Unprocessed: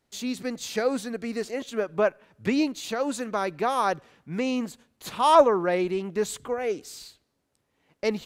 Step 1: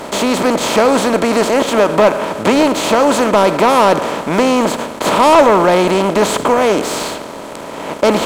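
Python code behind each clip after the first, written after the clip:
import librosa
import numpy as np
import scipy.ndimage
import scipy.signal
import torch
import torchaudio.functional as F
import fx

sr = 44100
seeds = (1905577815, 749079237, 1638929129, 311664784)

y = fx.bin_compress(x, sr, power=0.4)
y = fx.leveller(y, sr, passes=2)
y = y * 10.0 ** (1.5 / 20.0)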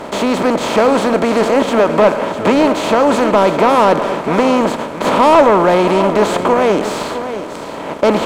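y = fx.high_shelf(x, sr, hz=4400.0, db=-10.0)
y = y + 10.0 ** (-11.0 / 20.0) * np.pad(y, (int(654 * sr / 1000.0), 0))[:len(y)]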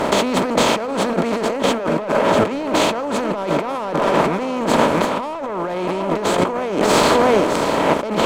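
y = fx.over_compress(x, sr, threshold_db=-21.0, ratio=-1.0)
y = y * 10.0 ** (1.5 / 20.0)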